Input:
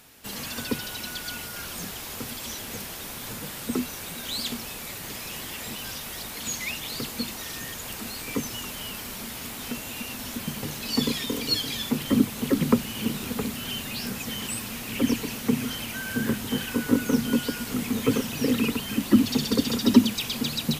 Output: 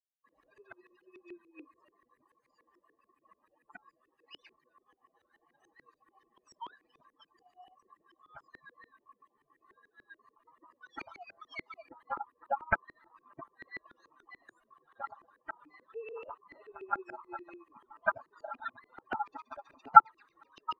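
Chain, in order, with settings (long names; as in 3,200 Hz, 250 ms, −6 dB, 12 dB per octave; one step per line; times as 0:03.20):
spectral dynamics exaggerated over time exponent 3
ring modulation 1,100 Hz
auto-filter low-pass saw up 6.9 Hz 330–2,000 Hz
level −1 dB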